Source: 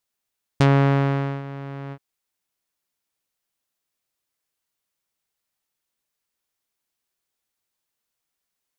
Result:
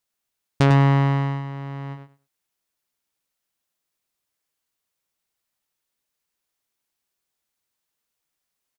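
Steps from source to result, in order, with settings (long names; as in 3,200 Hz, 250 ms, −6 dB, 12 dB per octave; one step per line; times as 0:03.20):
repeating echo 100 ms, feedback 17%, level −7.5 dB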